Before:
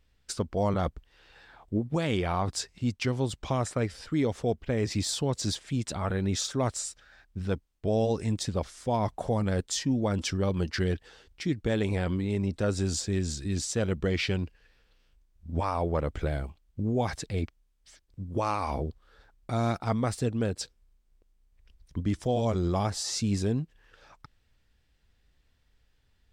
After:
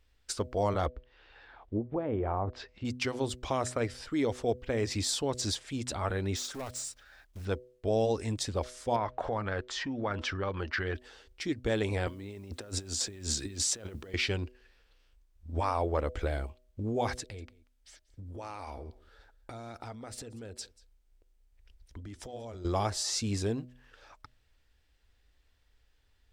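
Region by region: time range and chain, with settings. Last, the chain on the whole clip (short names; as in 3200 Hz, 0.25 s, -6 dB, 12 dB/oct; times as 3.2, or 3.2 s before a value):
0.86–2.85 LPF 3500 Hz + treble ducked by the level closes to 810 Hz, closed at -24 dBFS
6.36–7.46 block floating point 5-bit + compressor 1.5:1, threshold -38 dBFS + overloaded stage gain 33 dB
8.96–10.95 bell 1400 Hz +10.5 dB 1.7 oct + compressor 3:1, threshold -28 dBFS + LPF 3900 Hz
12.07–14.14 HPF 85 Hz 24 dB/oct + negative-ratio compressor -34 dBFS, ratio -0.5 + requantised 12-bit, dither triangular
17.2–22.65 notch 1100 Hz, Q 8.4 + compressor 12:1, threshold -36 dBFS + echo 0.186 s -21.5 dB
whole clip: bell 160 Hz -13.5 dB 0.75 oct; de-hum 124.6 Hz, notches 5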